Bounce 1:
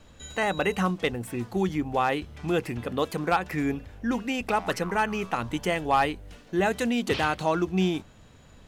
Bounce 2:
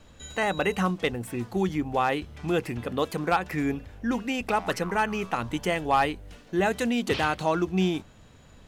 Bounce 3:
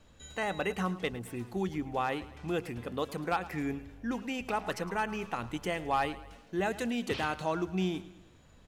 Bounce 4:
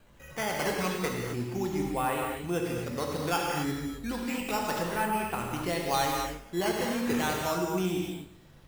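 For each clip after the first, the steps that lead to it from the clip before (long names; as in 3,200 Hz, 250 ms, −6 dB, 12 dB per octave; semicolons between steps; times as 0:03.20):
no processing that can be heard
repeating echo 108 ms, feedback 49%, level −17 dB; level −7 dB
sample-and-hold swept by an LFO 8×, swing 100% 0.34 Hz; reverb whose tail is shaped and stops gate 290 ms flat, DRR −1 dB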